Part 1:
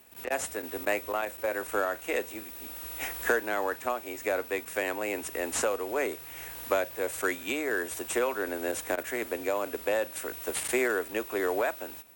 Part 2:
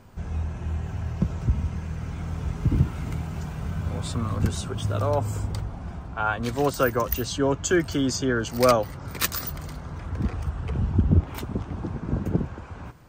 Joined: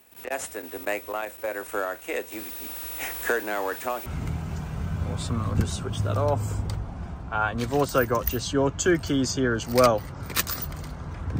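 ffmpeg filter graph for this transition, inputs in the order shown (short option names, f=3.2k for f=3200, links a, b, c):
-filter_complex "[0:a]asettb=1/sr,asplit=3[a][b][c];[a]atrim=end=2.324[d];[b]atrim=start=2.32:end=4.06,asetpts=PTS-STARTPTS,afade=t=in:d=0.004:c=qsin,afade=t=out:st=1.736:d=0.004:c=qsin,aeval=exprs='val(0)+0.5*0.0168*sgn(val(0))':c=same[e];[c]atrim=start=4.056[f];[d][e]acrossfade=d=0.004:c1=hsin:c2=qsin[g];[g][f]acrossfade=d=0.004:c1=qsin:c2=hsin,apad=whole_dur=11.39,atrim=end=11.39,atrim=end=4.062[h];[1:a]atrim=start=2.908:end=10.24[i];[h][i]acrossfade=d=0.004:c1=hsin:c2=hsin"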